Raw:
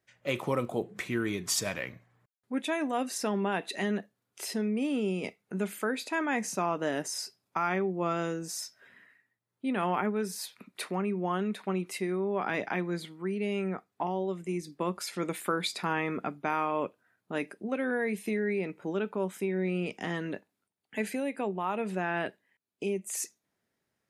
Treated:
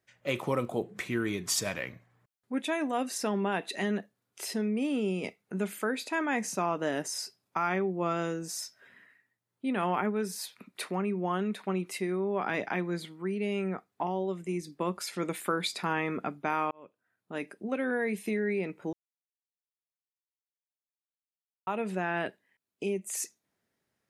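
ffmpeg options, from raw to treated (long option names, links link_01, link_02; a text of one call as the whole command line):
ffmpeg -i in.wav -filter_complex "[0:a]asplit=4[link_01][link_02][link_03][link_04];[link_01]atrim=end=16.71,asetpts=PTS-STARTPTS,afade=type=out:start_time=16.706:duration=0.004:curve=hsin[link_05];[link_02]atrim=start=16.71:end=18.93,asetpts=PTS-STARTPTS,afade=type=in:duration=0.99,afade=type=out:start_time=2.216:duration=0.004:curve=hsin[link_06];[link_03]atrim=start=18.93:end=21.67,asetpts=PTS-STARTPTS,volume=0[link_07];[link_04]atrim=start=21.67,asetpts=PTS-STARTPTS,afade=type=in:duration=0.004:curve=hsin[link_08];[link_05][link_06][link_07][link_08]concat=n=4:v=0:a=1" out.wav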